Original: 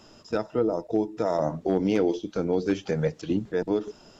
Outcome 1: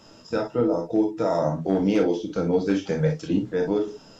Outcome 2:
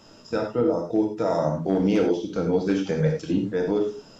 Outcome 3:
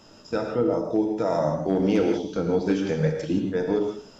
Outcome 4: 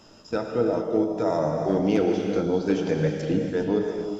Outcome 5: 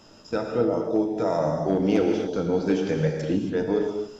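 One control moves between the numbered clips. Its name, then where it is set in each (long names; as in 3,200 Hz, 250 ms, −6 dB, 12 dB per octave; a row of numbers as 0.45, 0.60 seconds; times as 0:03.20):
reverb whose tail is shaped and stops, gate: 80, 120, 200, 460, 300 milliseconds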